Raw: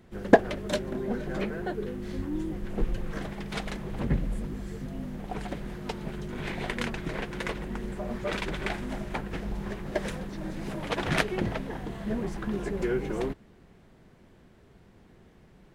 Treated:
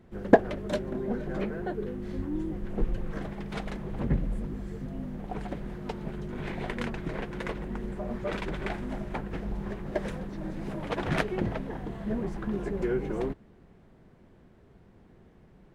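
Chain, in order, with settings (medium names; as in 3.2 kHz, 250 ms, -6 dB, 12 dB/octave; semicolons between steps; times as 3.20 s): treble shelf 2.1 kHz -9 dB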